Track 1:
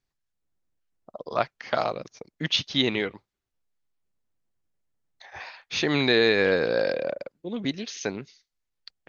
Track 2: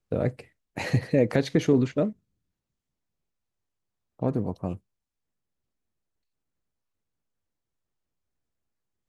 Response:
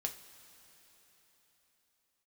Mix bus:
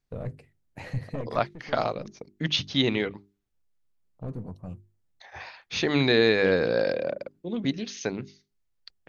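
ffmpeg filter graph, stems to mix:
-filter_complex "[0:a]volume=0.794,asplit=2[s0][s1];[1:a]equalizer=f=320:t=o:w=1.5:g=-4,acrossover=split=3300[s2][s3];[s3]acompressor=threshold=0.00501:ratio=4:attack=1:release=60[s4];[s2][s4]amix=inputs=2:normalize=0,aeval=exprs='(tanh(10*val(0)+0.35)-tanh(0.35))/10':c=same,volume=0.398[s5];[s1]apad=whole_len=400728[s6];[s5][s6]sidechaincompress=threshold=0.0178:ratio=4:attack=16:release=1100[s7];[s0][s7]amix=inputs=2:normalize=0,lowshelf=f=290:g=7.5,bandreject=f=50:t=h:w=6,bandreject=f=100:t=h:w=6,bandreject=f=150:t=h:w=6,bandreject=f=200:t=h:w=6,bandreject=f=250:t=h:w=6,bandreject=f=300:t=h:w=6,bandreject=f=350:t=h:w=6,bandreject=f=400:t=h:w=6"

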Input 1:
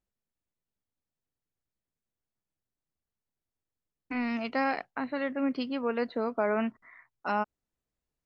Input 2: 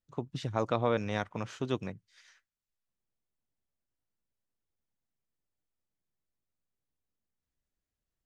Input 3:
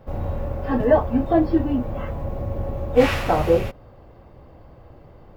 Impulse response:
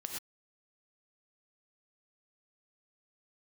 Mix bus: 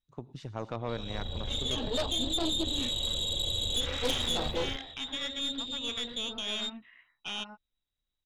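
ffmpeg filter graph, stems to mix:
-filter_complex "[0:a]alimiter=limit=0.0841:level=0:latency=1:release=41,volume=0.631,asplit=2[s0][s1];[s1]volume=0.447[s2];[1:a]volume=0.376,asplit=4[s3][s4][s5][s6];[s4]volume=0.224[s7];[s5]volume=0.211[s8];[2:a]equalizer=f=400:w=1.6:g=4.5,adelay=800,volume=0.708,asplit=3[s9][s10][s11];[s10]volume=0.075[s12];[s11]volume=0.224[s13];[s6]apad=whole_len=271962[s14];[s9][s14]sidechaincompress=threshold=0.00282:ratio=5:attack=12:release=558[s15];[s0][s15]amix=inputs=2:normalize=0,lowpass=f=3300:t=q:w=0.5098,lowpass=f=3300:t=q:w=0.6013,lowpass=f=3300:t=q:w=0.9,lowpass=f=3300:t=q:w=2.563,afreqshift=-3900,acompressor=threshold=0.0447:ratio=8,volume=1[s16];[3:a]atrim=start_sample=2205[s17];[s2][s7][s12]amix=inputs=3:normalize=0[s18];[s18][s17]afir=irnorm=-1:irlink=0[s19];[s8][s13]amix=inputs=2:normalize=0,aecho=0:1:265:1[s20];[s3][s16][s19][s20]amix=inputs=4:normalize=0,lowshelf=f=74:g=10,aeval=exprs='0.2*(cos(1*acos(clip(val(0)/0.2,-1,1)))-cos(1*PI/2))+0.0794*(cos(3*acos(clip(val(0)/0.2,-1,1)))-cos(3*PI/2))+0.02*(cos(4*acos(clip(val(0)/0.2,-1,1)))-cos(4*PI/2))+0.0447*(cos(5*acos(clip(val(0)/0.2,-1,1)))-cos(5*PI/2))+0.00562*(cos(8*acos(clip(val(0)/0.2,-1,1)))-cos(8*PI/2))':c=same"

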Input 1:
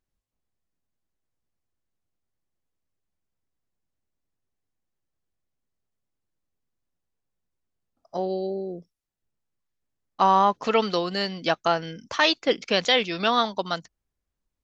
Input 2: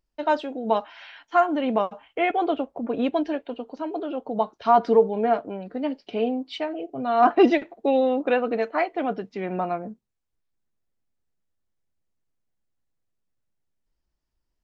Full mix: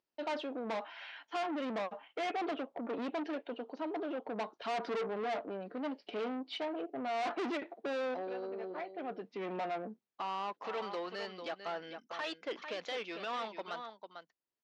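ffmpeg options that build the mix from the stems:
-filter_complex "[0:a]agate=range=0.447:threshold=0.00631:ratio=16:detection=peak,bass=f=250:g=-8,treble=f=4000:g=-9,alimiter=limit=0.2:level=0:latency=1:release=39,volume=0.376,asplit=3[s0][s1][s2];[s1]volume=0.266[s3];[1:a]volume=0.708[s4];[s2]apad=whole_len=645313[s5];[s4][s5]sidechaincompress=threshold=0.001:ratio=3:attack=16:release=550[s6];[s3]aecho=0:1:447:1[s7];[s0][s6][s7]amix=inputs=3:normalize=0,aeval=exprs='(tanh(44.7*val(0)+0.2)-tanh(0.2))/44.7':c=same,highpass=260,lowpass=4700"

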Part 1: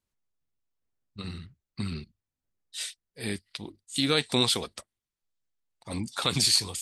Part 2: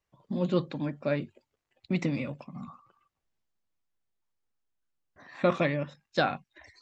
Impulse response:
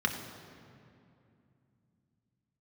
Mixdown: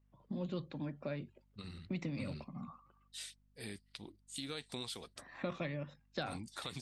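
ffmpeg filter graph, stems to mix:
-filter_complex "[0:a]acompressor=threshold=0.0141:ratio=2.5,adelay=400,volume=0.398[s0];[1:a]highshelf=f=5200:g=-11.5,acrossover=split=120|3000[s1][s2][s3];[s2]acompressor=threshold=0.0178:ratio=4[s4];[s1][s4][s3]amix=inputs=3:normalize=0,aeval=exprs='val(0)+0.000501*(sin(2*PI*50*n/s)+sin(2*PI*2*50*n/s)/2+sin(2*PI*3*50*n/s)/3+sin(2*PI*4*50*n/s)/4+sin(2*PI*5*50*n/s)/5)':c=same,volume=0.596[s5];[s0][s5]amix=inputs=2:normalize=0"

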